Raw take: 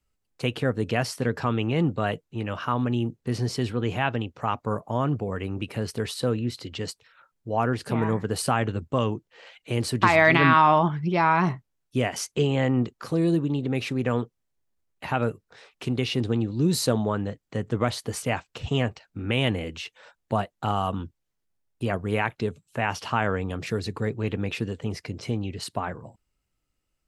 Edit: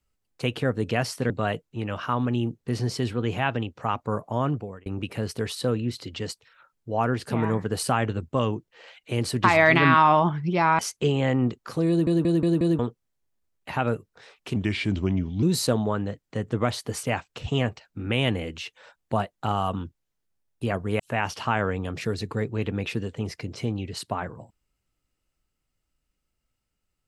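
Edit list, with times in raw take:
1.30–1.89 s: delete
5.06–5.45 s: fade out
11.38–12.14 s: delete
13.24 s: stutter in place 0.18 s, 5 plays
15.91–16.62 s: speed 82%
22.19–22.65 s: delete

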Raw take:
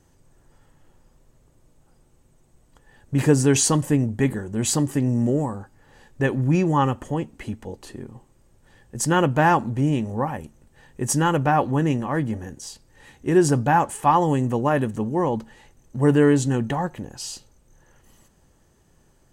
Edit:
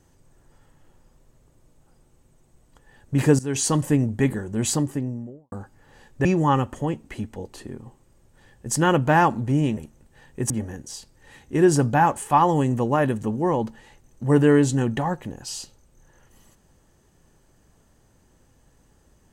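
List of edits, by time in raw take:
3.39–3.81 s: fade in linear, from -18.5 dB
4.56–5.52 s: studio fade out
6.25–6.54 s: delete
10.06–10.38 s: delete
11.11–12.23 s: delete

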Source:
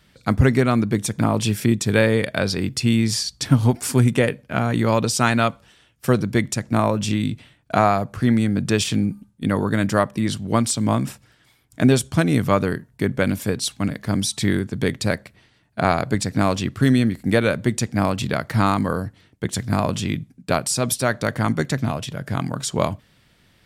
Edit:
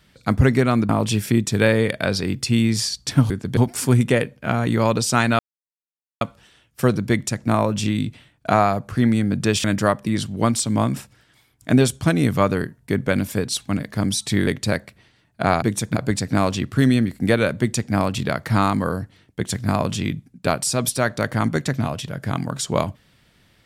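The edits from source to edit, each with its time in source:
0.89–1.23 s: move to 16.00 s
5.46 s: insert silence 0.82 s
8.89–9.75 s: delete
14.58–14.85 s: move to 3.64 s

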